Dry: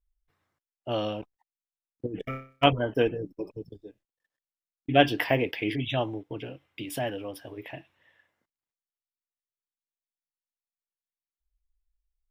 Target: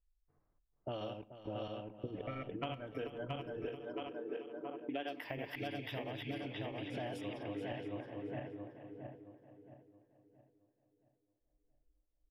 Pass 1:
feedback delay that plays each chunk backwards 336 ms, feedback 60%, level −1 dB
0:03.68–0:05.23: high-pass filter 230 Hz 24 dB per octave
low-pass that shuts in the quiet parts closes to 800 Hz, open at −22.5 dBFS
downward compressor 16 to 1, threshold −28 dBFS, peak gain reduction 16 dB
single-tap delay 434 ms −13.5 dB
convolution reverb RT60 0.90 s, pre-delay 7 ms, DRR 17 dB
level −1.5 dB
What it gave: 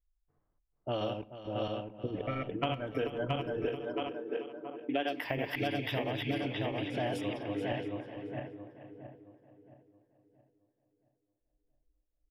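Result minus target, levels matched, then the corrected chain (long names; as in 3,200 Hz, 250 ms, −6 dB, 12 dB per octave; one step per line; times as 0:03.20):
downward compressor: peak gain reduction −8.5 dB
feedback delay that plays each chunk backwards 336 ms, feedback 60%, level −1 dB
0:03.68–0:05.23: high-pass filter 230 Hz 24 dB per octave
low-pass that shuts in the quiet parts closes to 800 Hz, open at −22.5 dBFS
downward compressor 16 to 1, threshold −37 dBFS, peak gain reduction 24.5 dB
single-tap delay 434 ms −13.5 dB
convolution reverb RT60 0.90 s, pre-delay 7 ms, DRR 17 dB
level −1.5 dB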